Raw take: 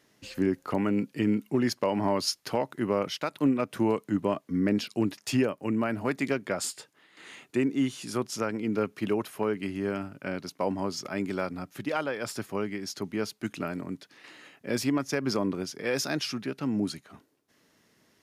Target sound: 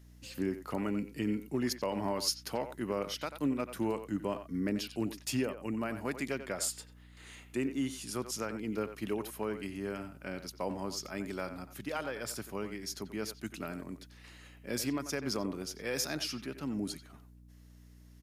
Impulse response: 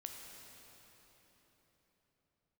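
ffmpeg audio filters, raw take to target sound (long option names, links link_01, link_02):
-filter_complex "[0:a]aeval=exprs='val(0)+0.00447*(sin(2*PI*60*n/s)+sin(2*PI*2*60*n/s)/2+sin(2*PI*3*60*n/s)/3+sin(2*PI*4*60*n/s)/4+sin(2*PI*5*60*n/s)/5)':channel_layout=same,crystalizer=i=1.5:c=0,asplit=2[link_01][link_02];[link_02]adelay=90,highpass=300,lowpass=3400,asoftclip=type=hard:threshold=-18.5dB,volume=-10dB[link_03];[link_01][link_03]amix=inputs=2:normalize=0,volume=-7.5dB"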